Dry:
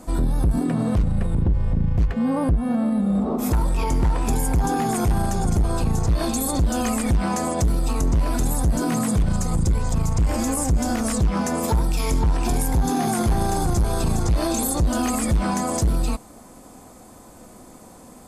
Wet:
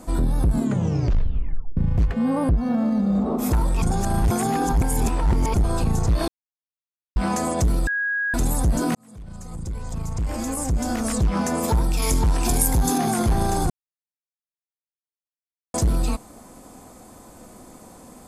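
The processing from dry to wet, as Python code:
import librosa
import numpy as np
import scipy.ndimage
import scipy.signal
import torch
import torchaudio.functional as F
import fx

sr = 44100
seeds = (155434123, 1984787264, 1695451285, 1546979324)

y = fx.resample_linear(x, sr, factor=3, at=(2.49, 3.26))
y = fx.high_shelf(y, sr, hz=5300.0, db=10.0, at=(12.02, 12.98))
y = fx.edit(y, sr, fx.tape_stop(start_s=0.51, length_s=1.26),
    fx.reverse_span(start_s=3.82, length_s=1.72),
    fx.silence(start_s=6.28, length_s=0.88),
    fx.bleep(start_s=7.87, length_s=0.47, hz=1650.0, db=-21.0),
    fx.fade_in_span(start_s=8.95, length_s=2.46),
    fx.silence(start_s=13.7, length_s=2.04), tone=tone)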